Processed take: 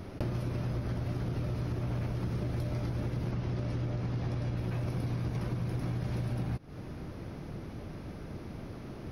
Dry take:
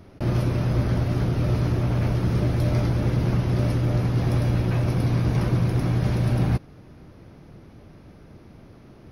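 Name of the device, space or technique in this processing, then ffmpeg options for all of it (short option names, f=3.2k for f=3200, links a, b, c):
serial compression, peaks first: -filter_complex "[0:a]asettb=1/sr,asplit=3[a][b][c];[a]atrim=end=3.314[d];[b]atrim=start=3.31:end=4.57,asetpts=PTS-STARTPTS,afade=t=in:d=0.004:c=qsin,afade=t=out:st=1.256:d=0.004:c=qsin,lowpass=7.3k[e];[c]atrim=start=4.566[f];[d][e]acrossfade=d=0.004:c1=hsin:c2=qsin[g];[g][f]acrossfade=d=0.004:c1=qsin:c2=hsin,acompressor=threshold=-30dB:ratio=6,acompressor=threshold=-36dB:ratio=3,volume=4.5dB"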